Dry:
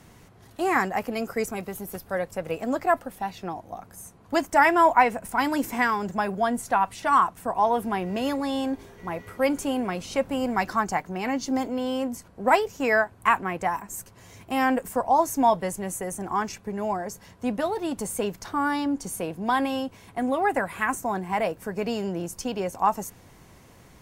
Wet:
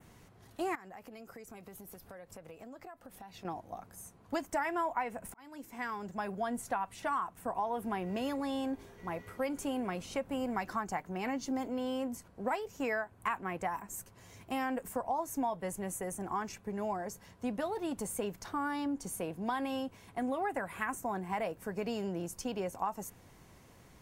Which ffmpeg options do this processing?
ffmpeg -i in.wav -filter_complex "[0:a]asettb=1/sr,asplit=3[link_01][link_02][link_03];[link_01]atrim=end=0.754[link_04];[link_02]atrim=start=0.75:end=3.45,asetpts=PTS-STARTPTS,afade=type=in:duration=0.004:curve=qsin,afade=type=out:start_time=2.696:duration=0.004:curve=qsin,acompressor=threshold=-39dB:ratio=12:attack=3.2:release=140:knee=1:detection=peak[link_05];[link_03]atrim=start=3.446[link_06];[link_04][link_05]acrossfade=duration=0.004:curve1=hsin:curve2=qsin[link_07];[link_07][link_06]acrossfade=duration=0.004:curve1=qsin:curve2=hsin,asplit=2[link_08][link_09];[link_08]atrim=end=5.34,asetpts=PTS-STARTPTS,afade=type=out:start_time=5.336:duration=0.004:curve=hsin[link_10];[link_09]atrim=start=5.34,asetpts=PTS-STARTPTS,afade=type=in:duration=1.37[link_11];[link_10][link_11]concat=n=2:v=0:a=1,adynamicequalizer=threshold=0.00355:dfrequency=4800:dqfactor=1.3:tfrequency=4800:tqfactor=1.3:attack=5:release=100:ratio=0.375:range=2.5:mode=cutabove:tftype=bell,acompressor=threshold=-24dB:ratio=6,volume=-6.5dB" out.wav

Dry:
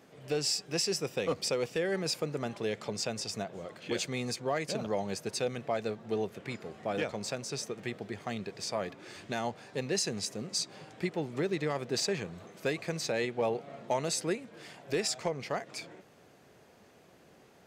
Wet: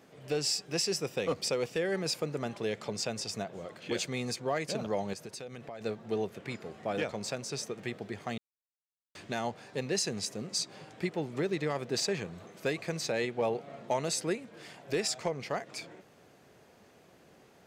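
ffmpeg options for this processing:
ffmpeg -i in.wav -filter_complex "[0:a]asettb=1/sr,asplit=3[link_01][link_02][link_03];[link_01]atrim=end=5.134[link_04];[link_02]atrim=start=5.13:end=5.81,asetpts=PTS-STARTPTS,afade=type=in:duration=0.004:curve=qsin,afade=type=out:start_time=0.676:duration=0.004:curve=qsin,acompressor=threshold=-40dB:ratio=5:attack=3.2:release=140:knee=1:detection=peak[link_05];[link_03]atrim=start=5.806[link_06];[link_04][link_05]acrossfade=duration=0.004:curve1=hsin:curve2=qsin[link_07];[link_07][link_06]acrossfade=duration=0.004:curve1=qsin:curve2=hsin,asplit=3[link_08][link_09][link_10];[link_08]atrim=end=8.38,asetpts=PTS-STARTPTS,afade=type=out:start_time=8.376:duration=0.004:curve=hsin[link_11];[link_09]atrim=start=8.38:end=9.15,asetpts=PTS-STARTPTS,volume=0[link_12];[link_10]atrim=start=9.15,asetpts=PTS-STARTPTS,afade=type=in:duration=0.004:curve=hsin[link_13];[link_11][link_12][link_13]concat=n=3:v=0:a=1" out.wav

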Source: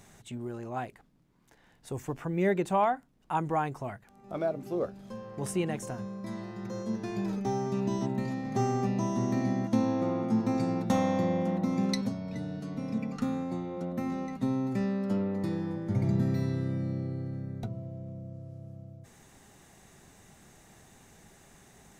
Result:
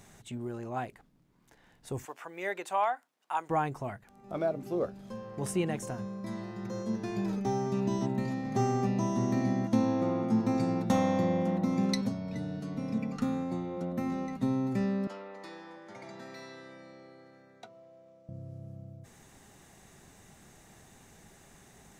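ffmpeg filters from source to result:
ffmpeg -i in.wav -filter_complex "[0:a]asettb=1/sr,asplit=3[link_01][link_02][link_03];[link_01]atrim=end=2.054[link_04];[link_02]atrim=start=2.05:end=3.5,asetpts=PTS-STARTPTS,afade=type=in:duration=0.004:curve=qsin,afade=type=out:start_time=1.446:duration=0.004:curve=qsin,highpass=730[link_05];[link_03]atrim=start=3.496[link_06];[link_04][link_05]acrossfade=duration=0.004:curve1=hsin:curve2=qsin[link_07];[link_07][link_06]acrossfade=duration=0.004:curve1=qsin:curve2=hsin,asettb=1/sr,asplit=3[link_08][link_09][link_10];[link_08]atrim=end=15.074[link_11];[link_09]atrim=start=15.07:end=18.29,asetpts=PTS-STARTPTS,afade=type=in:duration=0.004:curve=qsin,afade=type=out:start_time=3.216:duration=0.004:curve=qsin,highpass=770,lowpass=7400[link_12];[link_10]atrim=start=18.286[link_13];[link_11][link_12]acrossfade=duration=0.004:curve1=hsin:curve2=qsin[link_14];[link_14][link_13]acrossfade=duration=0.004:curve1=qsin:curve2=hsin" out.wav

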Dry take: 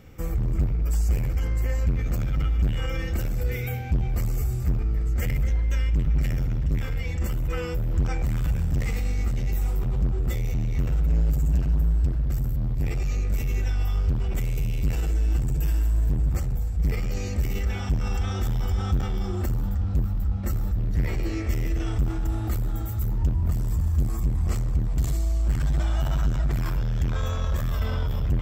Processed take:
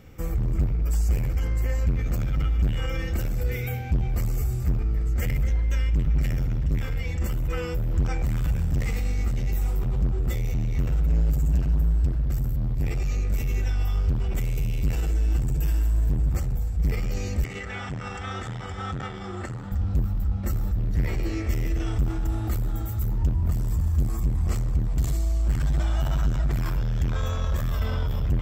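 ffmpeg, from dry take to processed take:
ffmpeg -i in.wav -filter_complex "[0:a]asettb=1/sr,asplit=3[link_01][link_02][link_03];[link_01]atrim=end=17.444[link_04];[link_02]atrim=start=17.44:end=19.72,asetpts=PTS-STARTPTS,afade=type=in:duration=0.004:curve=qsin,afade=type=out:start_time=2.276:duration=0.004:curve=qsin,highpass=140,equalizer=frequency=220:width_type=q:width=4:gain=-6,equalizer=frequency=340:width_type=q:width=4:gain=-4,equalizer=frequency=1300:width_type=q:width=4:gain=5,equalizer=frequency=1900:width_type=q:width=4:gain=7,equalizer=frequency=5600:width_type=q:width=4:gain=-7,lowpass=frequency=8500:width=0.5412,lowpass=frequency=8500:width=1.3066[link_05];[link_03]atrim=start=19.716[link_06];[link_04][link_05]acrossfade=duration=0.004:curve1=hsin:curve2=qsin[link_07];[link_07][link_06]acrossfade=duration=0.004:curve1=qsin:curve2=hsin" out.wav

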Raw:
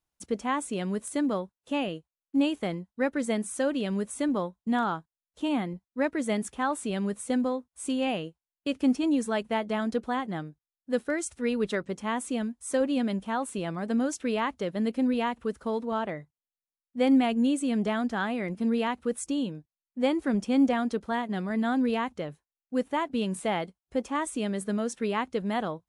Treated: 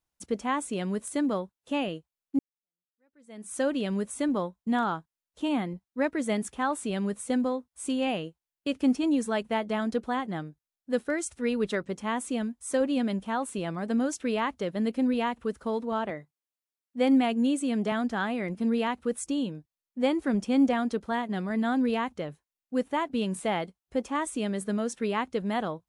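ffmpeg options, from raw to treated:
ffmpeg -i in.wav -filter_complex "[0:a]asettb=1/sr,asplit=3[link_01][link_02][link_03];[link_01]atrim=end=16.104[link_04];[link_02]atrim=start=16.1:end=17.92,asetpts=PTS-STARTPTS,afade=type=in:duration=0.004:curve=qsin,afade=type=out:start_time=1.816:duration=0.004:curve=qsin,highpass=160[link_05];[link_03]atrim=start=17.916[link_06];[link_04][link_05]acrossfade=duration=0.004:curve1=hsin:curve2=qsin[link_07];[link_07][link_06]acrossfade=duration=0.004:curve1=qsin:curve2=hsin,asplit=2[link_08][link_09];[link_08]atrim=end=2.39,asetpts=PTS-STARTPTS,afade=type=out:start_time=2.386:duration=0.004:curve=hsin[link_10];[link_09]atrim=start=2.39,asetpts=PTS-STARTPTS,afade=type=in:duration=1.15:curve=exp[link_11];[link_10][link_11]concat=n=2:v=0:a=1" out.wav

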